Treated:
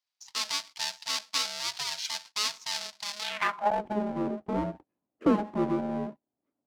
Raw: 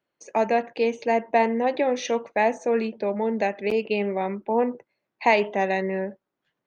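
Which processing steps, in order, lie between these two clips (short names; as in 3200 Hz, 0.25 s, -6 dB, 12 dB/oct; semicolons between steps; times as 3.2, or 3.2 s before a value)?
half-waves squared off; ring modulator 420 Hz; band-pass sweep 4800 Hz -> 320 Hz, 3.2–3.86; gain +4 dB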